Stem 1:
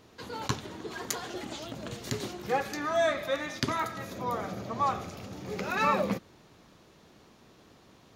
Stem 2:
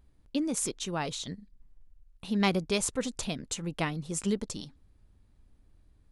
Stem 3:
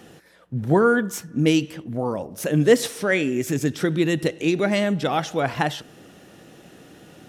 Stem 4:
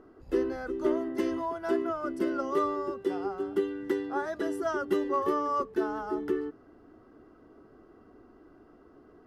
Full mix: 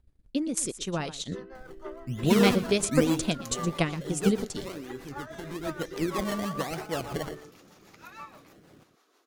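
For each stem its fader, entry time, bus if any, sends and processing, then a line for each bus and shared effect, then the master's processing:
-1.0 dB, 2.35 s, no send, no echo send, high shelf 6000 Hz +11 dB; compressor 2:1, threshold -42 dBFS, peak gain reduction 12 dB; ladder high-pass 780 Hz, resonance 35%
-3.0 dB, 0.00 s, no send, echo send -17 dB, AGC gain up to 6.5 dB; transient shaper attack +7 dB, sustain -7 dB
3.11 s -5.5 dB -> 3.75 s -16.5 dB -> 5.47 s -16.5 dB -> 5.98 s -8 dB, 1.55 s, no send, echo send -12 dB, decimation with a swept rate 24×, swing 100% 1.1 Hz
-2.0 dB, 1.00 s, no send, no echo send, HPF 730 Hz 12 dB/oct; high shelf 3000 Hz -11.5 dB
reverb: off
echo: echo 0.119 s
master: rotary speaker horn 6.3 Hz

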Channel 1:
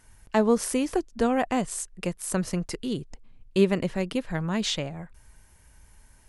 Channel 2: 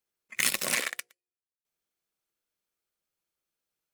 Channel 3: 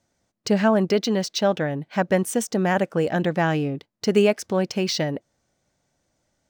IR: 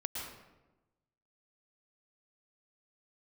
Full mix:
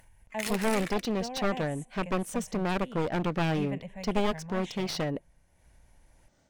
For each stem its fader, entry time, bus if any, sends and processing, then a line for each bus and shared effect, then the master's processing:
-11.0 dB, 0.00 s, send -18.5 dB, fixed phaser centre 1300 Hz, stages 6
+2.0 dB, 0.00 s, no send, auto duck -9 dB, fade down 0.30 s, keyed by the first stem
-12.0 dB, 0.00 s, no send, one-sided fold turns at -22.5 dBFS; AGC gain up to 9.5 dB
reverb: on, RT60 1.1 s, pre-delay 0.103 s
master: high shelf 4900 Hz -6 dB; upward compressor, threshold -50 dBFS

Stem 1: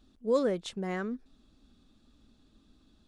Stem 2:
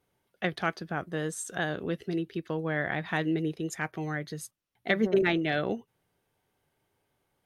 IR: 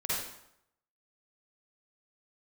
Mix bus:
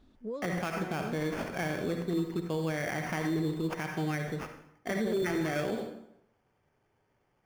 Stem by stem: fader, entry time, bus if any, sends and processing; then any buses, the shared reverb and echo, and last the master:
+1.0 dB, 0.00 s, no send, compressor 6:1, threshold -37 dBFS, peak gain reduction 15 dB
+0.5 dB, 0.00 s, send -10.5 dB, sample-rate reducer 3900 Hz, jitter 0%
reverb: on, RT60 0.75 s, pre-delay 43 ms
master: high shelf 4000 Hz -9.5 dB; limiter -23 dBFS, peak gain reduction 10.5 dB

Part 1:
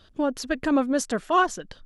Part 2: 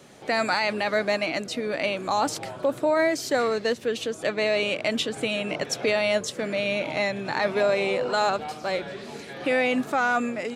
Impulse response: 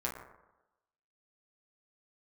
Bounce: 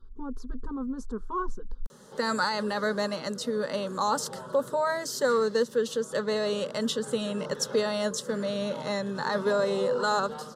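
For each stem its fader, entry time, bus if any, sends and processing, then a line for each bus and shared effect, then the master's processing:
-6.0 dB, 0.00 s, no send, tilt -4.5 dB/oct; limiter -13 dBFS, peak gain reduction 8.5 dB; fixed phaser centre 590 Hz, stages 6
+1.0 dB, 1.90 s, no send, dry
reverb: off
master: fixed phaser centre 470 Hz, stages 8

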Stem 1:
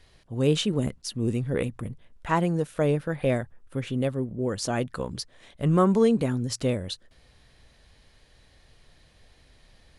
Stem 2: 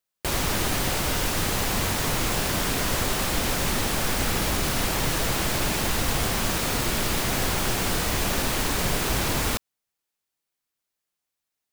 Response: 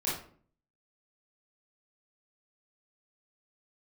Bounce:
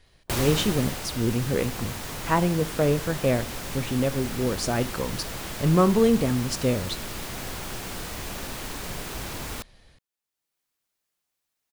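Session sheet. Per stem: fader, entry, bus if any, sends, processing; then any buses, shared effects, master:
-2.5 dB, 0.00 s, send -22 dB, AGC gain up to 3.5 dB
+2.5 dB, 0.05 s, no send, auto duck -12 dB, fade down 1.05 s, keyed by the first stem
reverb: on, RT60 0.50 s, pre-delay 21 ms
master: dry

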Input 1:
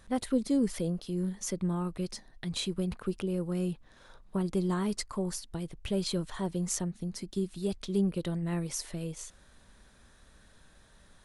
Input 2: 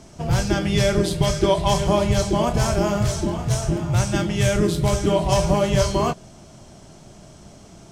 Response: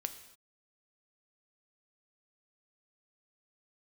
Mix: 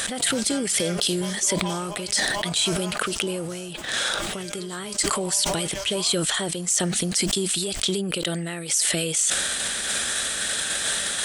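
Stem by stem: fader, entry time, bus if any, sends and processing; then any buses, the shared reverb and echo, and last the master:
+2.0 dB, 0.00 s, no send, thirty-one-band EQ 1000 Hz -12 dB, 3150 Hz +5 dB, 8000 Hz +10 dB; fast leveller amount 100%
-1.0 dB, 0.00 s, no send, compressor 2.5:1, threshold -26 dBFS, peak gain reduction 9 dB; auto duck -8 dB, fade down 0.25 s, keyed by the first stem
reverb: off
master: soft clip -6.5 dBFS, distortion -31 dB; HPF 1300 Hz 6 dB/oct; sustainer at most 23 dB/s

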